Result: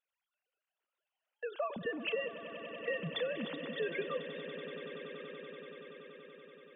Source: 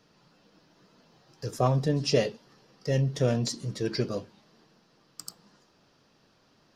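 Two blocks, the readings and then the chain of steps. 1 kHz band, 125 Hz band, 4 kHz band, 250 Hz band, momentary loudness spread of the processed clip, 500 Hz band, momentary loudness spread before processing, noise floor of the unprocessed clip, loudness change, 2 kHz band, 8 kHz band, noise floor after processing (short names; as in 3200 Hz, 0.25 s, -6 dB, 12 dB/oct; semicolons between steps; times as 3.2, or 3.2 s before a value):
-9.0 dB, -23.0 dB, -7.5 dB, -12.5 dB, 15 LU, -7.0 dB, 18 LU, -65 dBFS, -11.0 dB, +2.0 dB, under -40 dB, under -85 dBFS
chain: sine-wave speech; gate -57 dBFS, range -26 dB; tilt shelf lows -9.5 dB, about 1400 Hz; compressor, threshold -38 dBFS, peak gain reduction 15.5 dB; swelling echo 95 ms, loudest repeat 8, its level -16 dB; gain +4 dB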